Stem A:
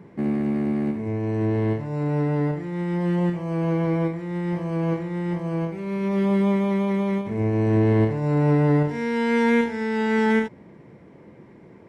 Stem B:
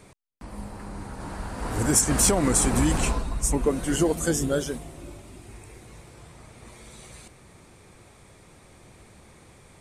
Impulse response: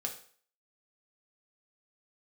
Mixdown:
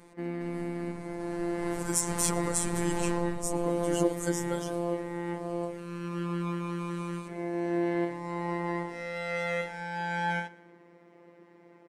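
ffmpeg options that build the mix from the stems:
-filter_complex "[0:a]highpass=330,volume=-1.5dB,asplit=2[link_01][link_02];[link_02]volume=-22.5dB[link_03];[1:a]volume=-5dB,asplit=2[link_04][link_05];[link_05]volume=-22dB[link_06];[link_03][link_06]amix=inputs=2:normalize=0,aecho=0:1:119|238|357|476|595|714:1|0.41|0.168|0.0689|0.0283|0.0116[link_07];[link_01][link_04][link_07]amix=inputs=3:normalize=0,afftfilt=real='hypot(re,im)*cos(PI*b)':imag='0':win_size=1024:overlap=0.75"

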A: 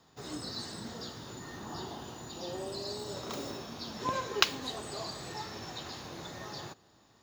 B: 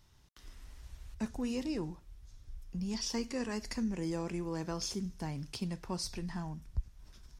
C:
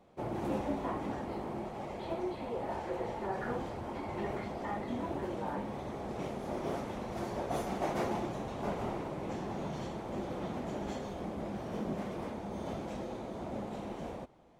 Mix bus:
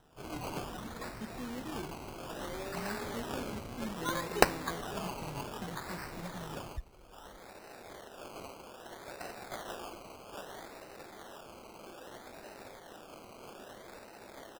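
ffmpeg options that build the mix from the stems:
ffmpeg -i stem1.wav -i stem2.wav -i stem3.wav -filter_complex "[0:a]highshelf=frequency=4400:gain=10,volume=-3dB[link_01];[1:a]volume=-7dB,asplit=2[link_02][link_03];[2:a]highpass=490,acrusher=samples=20:mix=1:aa=0.000001,adelay=1700,volume=-6.5dB[link_04];[link_03]apad=whole_len=718421[link_05];[link_04][link_05]sidechaincompress=threshold=-54dB:ratio=8:attack=16:release=470[link_06];[link_01][link_02][link_06]amix=inputs=3:normalize=0,acrusher=samples=19:mix=1:aa=0.000001:lfo=1:lforange=11.4:lforate=0.62" out.wav

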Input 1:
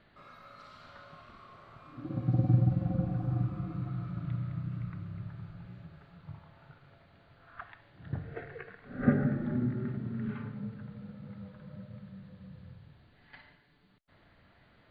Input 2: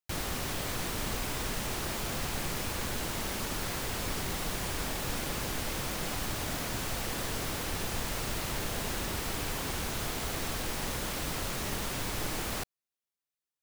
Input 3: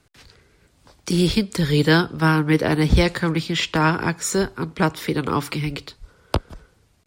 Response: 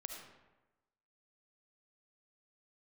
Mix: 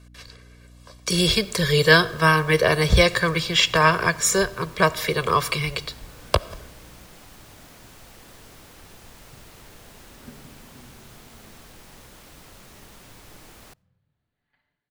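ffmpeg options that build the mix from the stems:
-filter_complex "[0:a]adelay=1200,volume=-19.5dB[link_01];[1:a]adelay=1100,volume=-13dB,asplit=2[link_02][link_03];[link_03]volume=-23dB[link_04];[2:a]lowshelf=frequency=390:gain=-8.5,aecho=1:1:1.8:0.96,aeval=exprs='val(0)+0.00316*(sin(2*PI*60*n/s)+sin(2*PI*2*60*n/s)/2+sin(2*PI*3*60*n/s)/3+sin(2*PI*4*60*n/s)/4+sin(2*PI*5*60*n/s)/5)':channel_layout=same,volume=1dB,asplit=2[link_05][link_06];[link_06]volume=-11.5dB[link_07];[3:a]atrim=start_sample=2205[link_08];[link_04][link_07]amix=inputs=2:normalize=0[link_09];[link_09][link_08]afir=irnorm=-1:irlink=0[link_10];[link_01][link_02][link_05][link_10]amix=inputs=4:normalize=0"

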